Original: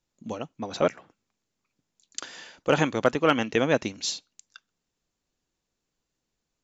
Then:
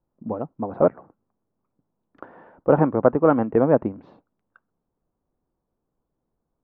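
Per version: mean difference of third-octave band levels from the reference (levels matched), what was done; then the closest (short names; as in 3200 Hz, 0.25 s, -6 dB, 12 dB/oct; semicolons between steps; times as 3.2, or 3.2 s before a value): 7.5 dB: LPF 1100 Hz 24 dB/oct; gain +6 dB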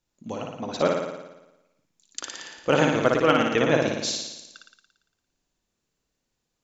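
5.0 dB: flutter echo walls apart 9.8 m, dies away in 1 s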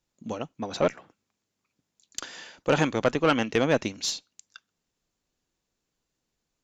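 1.5 dB: tube stage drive 14 dB, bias 0.3; gain +1.5 dB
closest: third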